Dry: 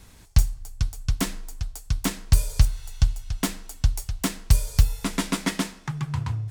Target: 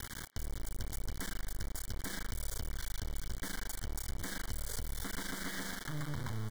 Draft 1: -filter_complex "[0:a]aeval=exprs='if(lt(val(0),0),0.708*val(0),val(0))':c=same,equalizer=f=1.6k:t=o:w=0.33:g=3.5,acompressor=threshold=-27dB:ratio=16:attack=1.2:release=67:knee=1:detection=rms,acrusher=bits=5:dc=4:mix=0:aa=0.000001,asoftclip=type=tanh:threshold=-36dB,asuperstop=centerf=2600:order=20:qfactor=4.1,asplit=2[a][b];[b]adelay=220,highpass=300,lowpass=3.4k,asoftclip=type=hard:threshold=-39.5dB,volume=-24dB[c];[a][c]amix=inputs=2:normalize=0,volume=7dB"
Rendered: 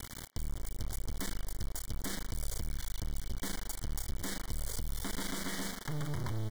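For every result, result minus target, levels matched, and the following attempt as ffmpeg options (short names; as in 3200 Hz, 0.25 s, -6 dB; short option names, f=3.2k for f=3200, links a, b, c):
compressor: peak gain reduction -8 dB; 2000 Hz band -3.5 dB
-filter_complex "[0:a]aeval=exprs='if(lt(val(0),0),0.708*val(0),val(0))':c=same,equalizer=f=1.6k:t=o:w=0.33:g=3.5,acompressor=threshold=-35.5dB:ratio=16:attack=1.2:release=67:knee=1:detection=rms,acrusher=bits=5:dc=4:mix=0:aa=0.000001,asoftclip=type=tanh:threshold=-36dB,asuperstop=centerf=2600:order=20:qfactor=4.1,asplit=2[a][b];[b]adelay=220,highpass=300,lowpass=3.4k,asoftclip=type=hard:threshold=-39.5dB,volume=-24dB[c];[a][c]amix=inputs=2:normalize=0,volume=7dB"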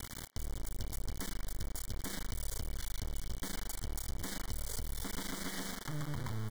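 2000 Hz band -3.5 dB
-filter_complex "[0:a]aeval=exprs='if(lt(val(0),0),0.708*val(0),val(0))':c=same,equalizer=f=1.6k:t=o:w=0.33:g=13,acompressor=threshold=-35.5dB:ratio=16:attack=1.2:release=67:knee=1:detection=rms,acrusher=bits=5:dc=4:mix=0:aa=0.000001,asoftclip=type=tanh:threshold=-36dB,asuperstop=centerf=2600:order=20:qfactor=4.1,asplit=2[a][b];[b]adelay=220,highpass=300,lowpass=3.4k,asoftclip=type=hard:threshold=-39.5dB,volume=-24dB[c];[a][c]amix=inputs=2:normalize=0,volume=7dB"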